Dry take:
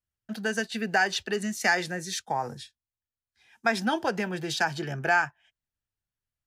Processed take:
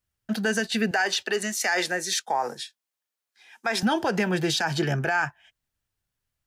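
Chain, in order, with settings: 0.91–3.83 s: high-pass 380 Hz 12 dB/octave; peak limiter -23 dBFS, peak gain reduction 11.5 dB; trim +8 dB

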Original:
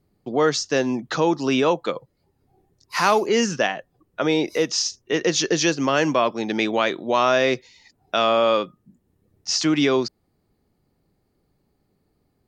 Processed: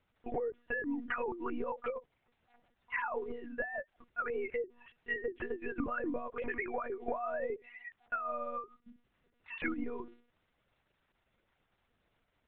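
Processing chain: formants replaced by sine waves; low-pass that closes with the level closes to 560 Hz, closed at -18 dBFS; peaking EQ 1.9 kHz +13.5 dB 1.8 oct; hum notches 50/100/150/200/250/300/350 Hz; compression 16:1, threshold -27 dBFS, peak gain reduction 18 dB; crackle 380 per s -51 dBFS; distance through air 190 m; monotone LPC vocoder at 8 kHz 240 Hz; trim -5 dB

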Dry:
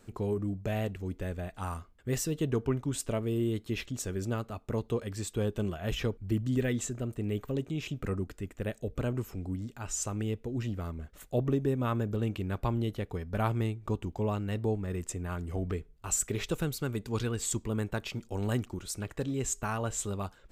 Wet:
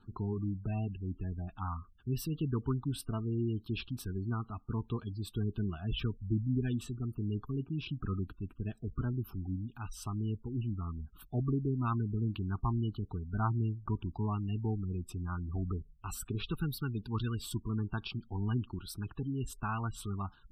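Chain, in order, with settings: static phaser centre 2 kHz, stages 6; spectral gate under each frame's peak -25 dB strong

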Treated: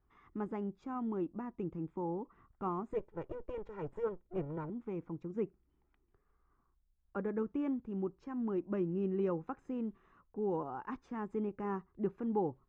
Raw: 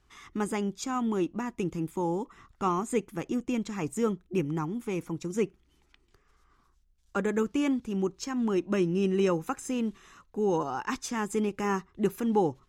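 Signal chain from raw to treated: 2.93–4.70 s: comb filter that takes the minimum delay 2.1 ms; low-pass 1.2 kHz 12 dB/octave; trim -8 dB

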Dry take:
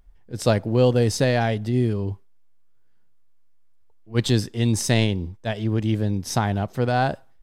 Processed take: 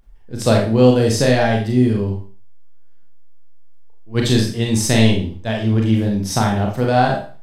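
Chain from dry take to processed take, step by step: Schroeder reverb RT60 0.4 s, combs from 28 ms, DRR -0.5 dB; trim +2.5 dB

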